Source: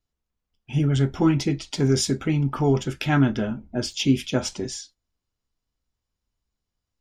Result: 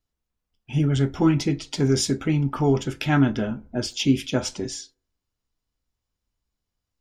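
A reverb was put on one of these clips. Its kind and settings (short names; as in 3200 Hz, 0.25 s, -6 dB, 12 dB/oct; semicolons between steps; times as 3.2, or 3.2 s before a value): FDN reverb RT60 0.56 s, low-frequency decay 0.75×, high-frequency decay 0.4×, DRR 19 dB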